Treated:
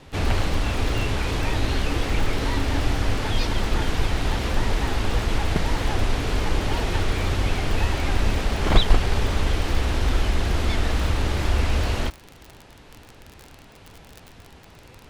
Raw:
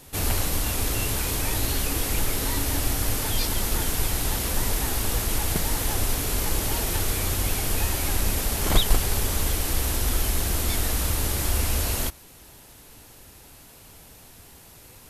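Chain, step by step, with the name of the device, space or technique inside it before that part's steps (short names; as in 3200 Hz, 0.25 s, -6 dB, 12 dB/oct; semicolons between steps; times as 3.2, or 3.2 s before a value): lo-fi chain (LPF 3400 Hz 12 dB/oct; wow and flutter; crackle 40/s -32 dBFS); gain +4 dB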